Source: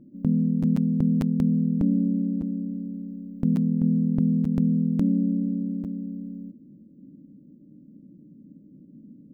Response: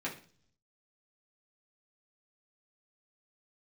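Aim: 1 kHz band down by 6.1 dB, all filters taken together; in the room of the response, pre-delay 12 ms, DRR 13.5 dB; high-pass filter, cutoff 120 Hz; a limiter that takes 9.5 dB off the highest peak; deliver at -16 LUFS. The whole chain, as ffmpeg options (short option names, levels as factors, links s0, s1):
-filter_complex "[0:a]highpass=120,equalizer=f=1000:t=o:g=-8.5,alimiter=limit=0.0794:level=0:latency=1,asplit=2[s0][s1];[1:a]atrim=start_sample=2205,adelay=12[s2];[s1][s2]afir=irnorm=-1:irlink=0,volume=0.141[s3];[s0][s3]amix=inputs=2:normalize=0,volume=5.01"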